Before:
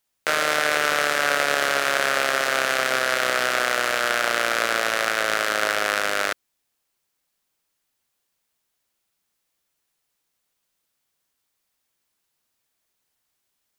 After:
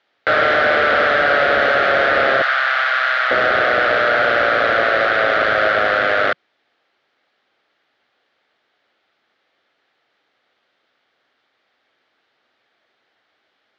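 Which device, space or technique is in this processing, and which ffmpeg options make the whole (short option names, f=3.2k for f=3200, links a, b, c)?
overdrive pedal into a guitar cabinet: -filter_complex "[0:a]asplit=2[a][b];[b]highpass=f=720:p=1,volume=30dB,asoftclip=type=tanh:threshold=-2dB[c];[a][c]amix=inputs=2:normalize=0,lowpass=f=1.4k:p=1,volume=-6dB,highpass=86,equalizer=f=170:t=q:w=4:g=-8,equalizer=f=1k:t=q:w=4:g=-9,equalizer=f=2.6k:t=q:w=4:g=-5,lowpass=f=3.9k:w=0.5412,lowpass=f=3.9k:w=1.3066,asettb=1/sr,asplit=3[d][e][f];[d]atrim=end=2.424[g];[e]atrim=start=2.42:end=3.31,asetpts=PTS-STARTPTS,afade=t=in:d=0.004:c=qsin,afade=t=out:st=0.886:d=0.004:c=qsin,highpass=f=880:w=0.5412,highpass=f=880:w=1.3066[h];[f]atrim=start=3.306[i];[g][h]acrossfade=d=0.004:c1=hsin:c2=qsin[j];[j][i]acrossfade=d=0.004:c1=qsin:c2=hsin"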